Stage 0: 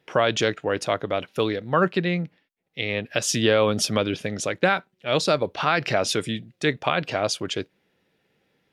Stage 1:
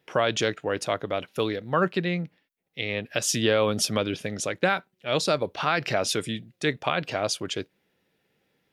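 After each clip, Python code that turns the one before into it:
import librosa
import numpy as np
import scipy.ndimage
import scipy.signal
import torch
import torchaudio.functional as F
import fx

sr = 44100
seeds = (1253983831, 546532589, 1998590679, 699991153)

y = fx.high_shelf(x, sr, hz=10000.0, db=8.5)
y = F.gain(torch.from_numpy(y), -3.0).numpy()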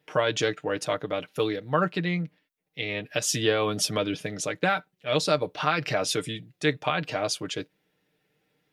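y = x + 0.54 * np.pad(x, (int(6.6 * sr / 1000.0), 0))[:len(x)]
y = F.gain(torch.from_numpy(y), -2.0).numpy()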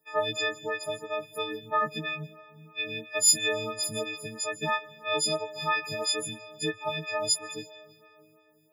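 y = fx.freq_snap(x, sr, grid_st=6)
y = fx.rev_freeverb(y, sr, rt60_s=3.4, hf_ratio=0.5, predelay_ms=110, drr_db=17.0)
y = fx.stagger_phaser(y, sr, hz=3.0)
y = F.gain(torch.from_numpy(y), -5.0).numpy()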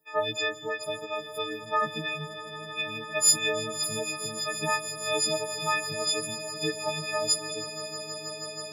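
y = fx.echo_swell(x, sr, ms=160, loudest=8, wet_db=-17.5)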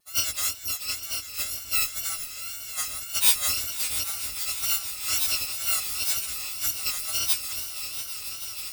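y = fx.bit_reversed(x, sr, seeds[0], block=256)
y = fx.echo_feedback(y, sr, ms=676, feedback_pct=58, wet_db=-14.0)
y = fx.wow_flutter(y, sr, seeds[1], rate_hz=2.1, depth_cents=76.0)
y = F.gain(torch.from_numpy(y), 2.0).numpy()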